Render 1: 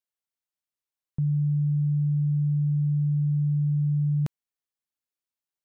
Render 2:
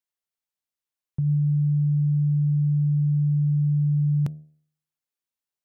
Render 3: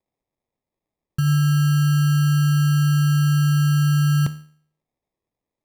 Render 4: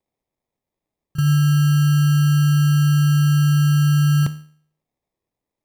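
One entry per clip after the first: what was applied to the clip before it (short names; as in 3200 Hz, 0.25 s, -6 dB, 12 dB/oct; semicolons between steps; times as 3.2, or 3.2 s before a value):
de-hum 76.15 Hz, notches 9; dynamic EQ 110 Hz, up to +4 dB, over -38 dBFS, Q 0.9
sample-and-hold 30×; gain +4 dB
pre-echo 33 ms -14 dB; gain +1 dB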